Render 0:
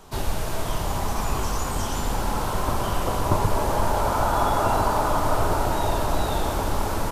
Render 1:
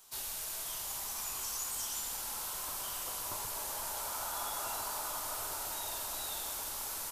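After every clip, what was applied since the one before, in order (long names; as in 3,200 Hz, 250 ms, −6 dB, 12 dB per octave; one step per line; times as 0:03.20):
first-order pre-emphasis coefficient 0.97
level −1.5 dB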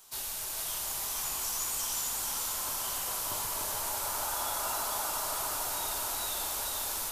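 echo with a time of its own for lows and highs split 1,100 Hz, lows 293 ms, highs 445 ms, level −3.5 dB
level +3 dB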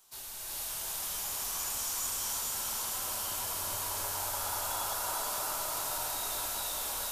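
reverb whose tail is shaped and stops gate 440 ms rising, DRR −4.5 dB
level −7 dB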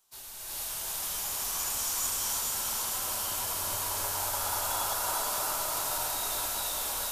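expander for the loud parts 1.5 to 1, over −56 dBFS
level +4 dB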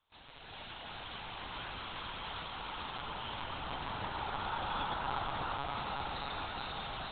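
one-pitch LPC vocoder at 8 kHz 140 Hz
level −2 dB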